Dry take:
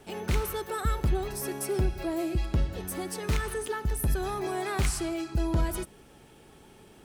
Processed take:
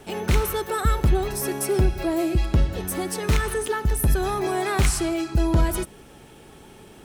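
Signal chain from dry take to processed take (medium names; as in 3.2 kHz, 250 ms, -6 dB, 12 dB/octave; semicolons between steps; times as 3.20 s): band-stop 4.7 kHz, Q 30; trim +7 dB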